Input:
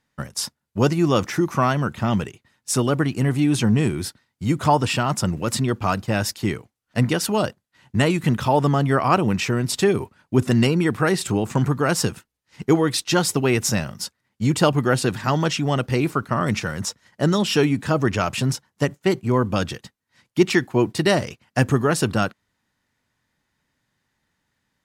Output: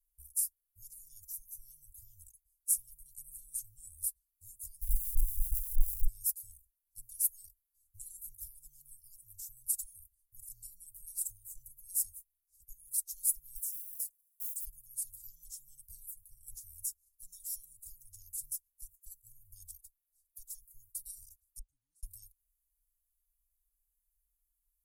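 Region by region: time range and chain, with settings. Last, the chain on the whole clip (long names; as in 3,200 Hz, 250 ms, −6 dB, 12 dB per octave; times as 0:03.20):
0:04.81–0:06.06: RIAA equalisation playback + output level in coarse steps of 23 dB + comparator with hysteresis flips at −41.5 dBFS
0:13.56–0:14.67: one scale factor per block 5 bits + tilt shelving filter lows −9.5 dB, about 700 Hz + downward compressor 5 to 1, threshold −31 dBFS
0:21.59–0:22.03: formant filter u + high-shelf EQ 6,000 Hz −7 dB
whole clip: downward compressor 3 to 1, threshold −20 dBFS; inverse Chebyshev band-stop filter 200–2,400 Hz, stop band 80 dB; comb filter 3.7 ms, depth 57%; level +6 dB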